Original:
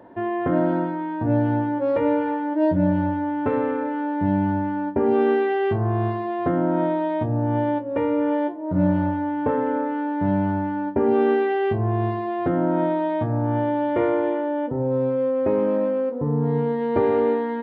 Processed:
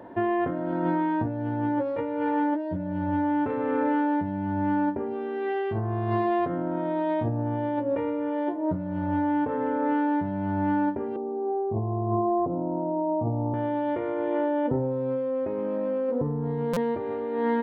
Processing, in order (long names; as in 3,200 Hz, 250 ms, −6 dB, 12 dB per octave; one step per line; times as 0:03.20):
0:11.16–0:13.54: Butterworth low-pass 1,100 Hz 72 dB per octave
compressor whose output falls as the input rises −26 dBFS, ratio −1
buffer that repeats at 0:16.73, samples 256, times 5
level −1 dB